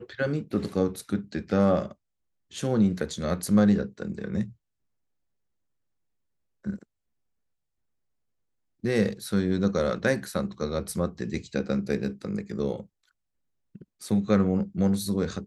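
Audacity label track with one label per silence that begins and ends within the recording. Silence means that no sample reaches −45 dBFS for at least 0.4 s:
1.930000	2.510000	silence
4.530000	6.640000	silence
6.830000	8.830000	silence
12.850000	13.750000	silence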